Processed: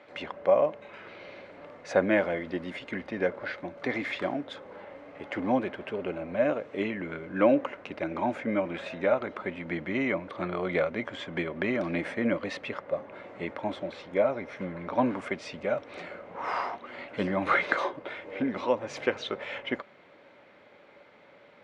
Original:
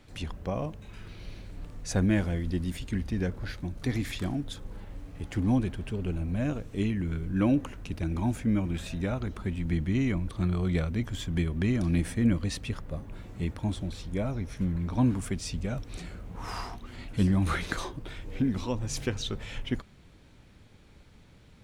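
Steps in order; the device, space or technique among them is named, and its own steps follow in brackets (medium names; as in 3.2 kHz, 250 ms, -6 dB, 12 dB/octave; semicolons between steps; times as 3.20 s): tin-can telephone (band-pass 480–2100 Hz; small resonant body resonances 570/2100 Hz, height 10 dB, ringing for 45 ms); trim +8.5 dB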